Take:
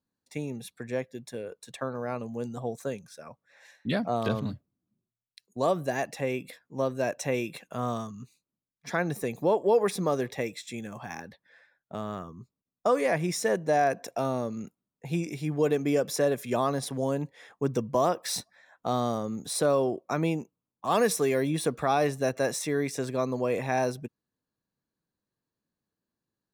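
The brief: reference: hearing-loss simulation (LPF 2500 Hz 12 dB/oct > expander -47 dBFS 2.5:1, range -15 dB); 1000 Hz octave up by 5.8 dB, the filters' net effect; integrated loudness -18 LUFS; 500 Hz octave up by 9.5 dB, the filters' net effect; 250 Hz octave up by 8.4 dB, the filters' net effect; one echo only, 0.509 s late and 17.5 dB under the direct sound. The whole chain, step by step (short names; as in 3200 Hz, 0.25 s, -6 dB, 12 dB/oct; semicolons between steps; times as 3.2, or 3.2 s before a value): LPF 2500 Hz 12 dB/oct; bell 250 Hz +7.5 dB; bell 500 Hz +8.5 dB; bell 1000 Hz +3.5 dB; echo 0.509 s -17.5 dB; expander -47 dBFS 2.5:1, range -15 dB; gain +3 dB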